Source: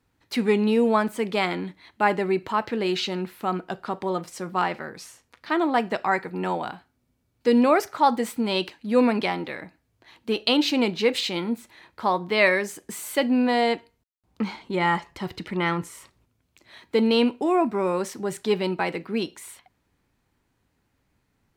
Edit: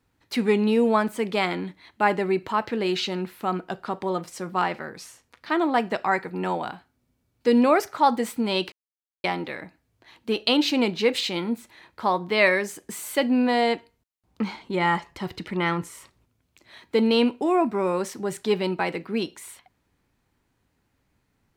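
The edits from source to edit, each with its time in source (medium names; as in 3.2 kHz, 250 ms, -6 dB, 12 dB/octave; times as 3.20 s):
8.72–9.24 s: mute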